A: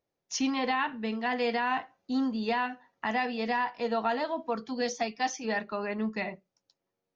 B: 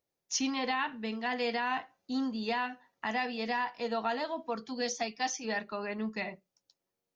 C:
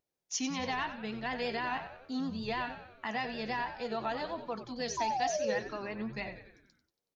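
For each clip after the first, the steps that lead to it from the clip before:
treble shelf 3.7 kHz +8 dB; trim -4 dB
painted sound fall, 4.97–5.59 s, 480–1000 Hz -30 dBFS; vibrato 6.3 Hz 56 cents; frequency-shifting echo 93 ms, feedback 54%, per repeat -85 Hz, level -11 dB; trim -3 dB

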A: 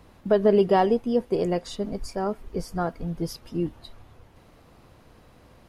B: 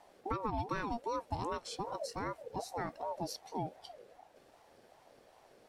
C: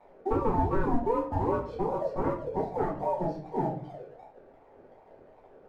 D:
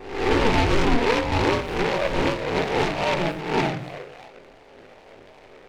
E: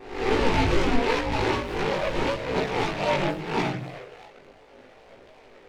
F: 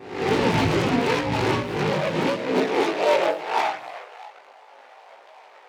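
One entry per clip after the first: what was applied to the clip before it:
graphic EQ with 31 bands 500 Hz -11 dB, 800 Hz -7 dB, 5 kHz +5 dB, 8 kHz +6 dB; compression 6:1, threshold -24 dBFS, peak gain reduction 8.5 dB; ring modulator with a swept carrier 620 Hz, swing 25%, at 2.6 Hz; trim -5.5 dB
low-pass 1 kHz 12 dB/octave; waveshaping leveller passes 1; simulated room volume 36 m³, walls mixed, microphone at 1.1 m
reverse spectral sustain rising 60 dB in 0.71 s; delay time shaken by noise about 1.4 kHz, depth 0.15 ms; trim +4.5 dB
chorus voices 2, 0.78 Hz, delay 18 ms, depth 2.5 ms
one-sided wavefolder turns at -19.5 dBFS; high-pass sweep 130 Hz -> 830 Hz, 1.91–3.72 s; trim +2 dB

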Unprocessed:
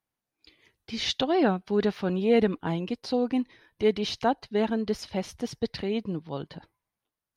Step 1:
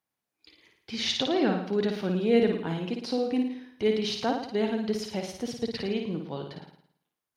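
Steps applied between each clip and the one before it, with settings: high-pass 140 Hz 6 dB/octave; dynamic bell 940 Hz, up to -6 dB, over -38 dBFS, Q 0.81; flutter echo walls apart 9.5 m, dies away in 0.64 s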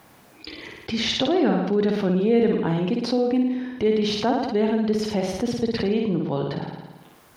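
treble shelf 2.2 kHz -9.5 dB; level flattener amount 50%; trim +2.5 dB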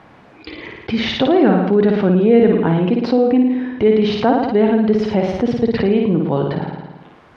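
low-pass 2.6 kHz 12 dB/octave; trim +7.5 dB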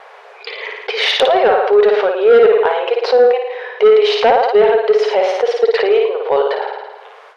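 brick-wall FIR high-pass 390 Hz; sine folder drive 4 dB, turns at -4.5 dBFS; gate with hold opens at -31 dBFS

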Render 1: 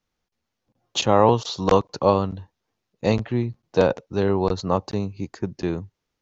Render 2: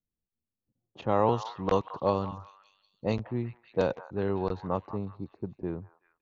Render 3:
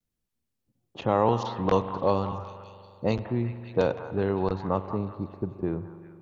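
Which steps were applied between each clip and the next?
level-controlled noise filter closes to 300 Hz, open at -12.5 dBFS; repeats whose band climbs or falls 189 ms, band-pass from 1.1 kHz, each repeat 0.7 oct, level -10 dB; trim -8.5 dB
in parallel at +1 dB: compression, threshold -33 dBFS, peak gain reduction 14 dB; on the sum: vibrato 0.46 Hz 23 cents; spring tank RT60 2.7 s, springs 42 ms, chirp 75 ms, DRR 12.5 dB

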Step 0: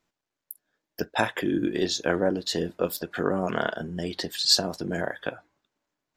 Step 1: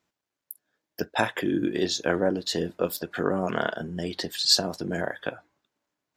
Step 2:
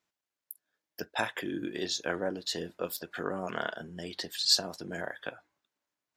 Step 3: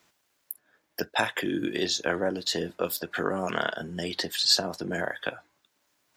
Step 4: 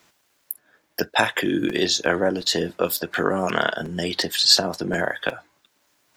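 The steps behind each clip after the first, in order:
high-pass 53 Hz
tilt shelf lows -3.5 dB, about 700 Hz; trim -7.5 dB
three bands compressed up and down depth 40%; trim +6 dB
crackling interface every 0.36 s, samples 256, repeat, from 0.97 s; trim +6.5 dB

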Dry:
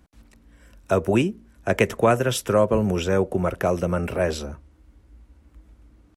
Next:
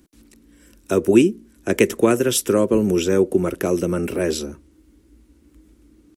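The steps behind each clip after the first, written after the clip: FFT filter 120 Hz 0 dB, 340 Hz +15 dB, 670 Hz -2 dB, 9.3 kHz +14 dB; trim -4.5 dB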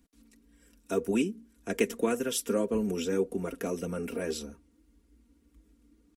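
comb 4.3 ms, depth 69%; flange 1.8 Hz, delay 0.8 ms, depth 3.7 ms, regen +58%; trim -8 dB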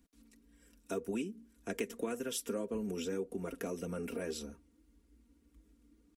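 compression 2.5:1, threshold -33 dBFS, peak gain reduction 8.5 dB; trim -3 dB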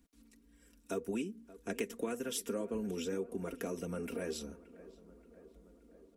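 tape echo 576 ms, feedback 76%, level -17 dB, low-pass 1.6 kHz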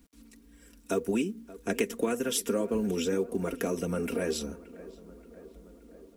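companded quantiser 8-bit; trim +8.5 dB

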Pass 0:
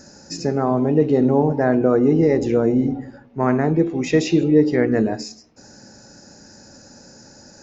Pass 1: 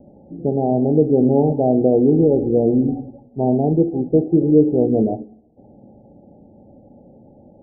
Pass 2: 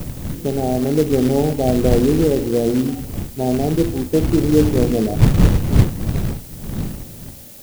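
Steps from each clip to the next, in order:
steep low-pass 820 Hz 96 dB/octave; trim +1.5 dB
wind noise 150 Hz -19 dBFS; short-mantissa float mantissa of 2-bit; added noise blue -39 dBFS; trim -1.5 dB

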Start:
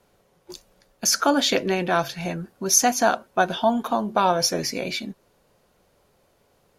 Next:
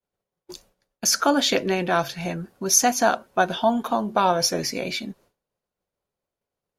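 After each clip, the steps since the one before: expander -48 dBFS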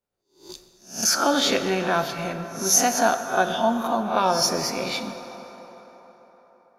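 reverse spectral sustain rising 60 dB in 0.39 s; on a send at -7.5 dB: reverberation RT60 4.6 s, pre-delay 6 ms; on the sum: trim -2.5 dB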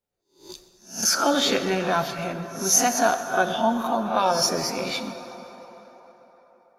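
coarse spectral quantiser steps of 15 dB

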